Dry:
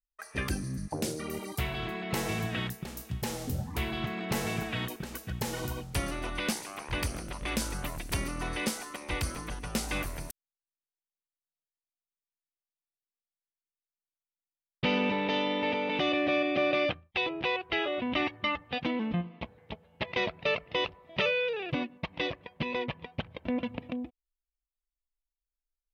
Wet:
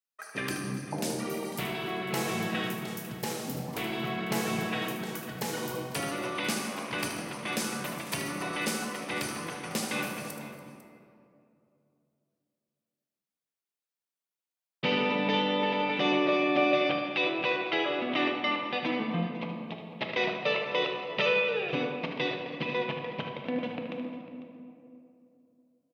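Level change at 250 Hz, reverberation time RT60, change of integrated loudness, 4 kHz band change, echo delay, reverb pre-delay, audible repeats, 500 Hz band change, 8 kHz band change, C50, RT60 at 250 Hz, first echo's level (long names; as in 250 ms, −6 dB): +1.5 dB, 2.6 s, +1.5 dB, +2.0 dB, 76 ms, 6 ms, 2, +2.5 dB, +1.5 dB, 2.5 dB, 3.0 s, −8.5 dB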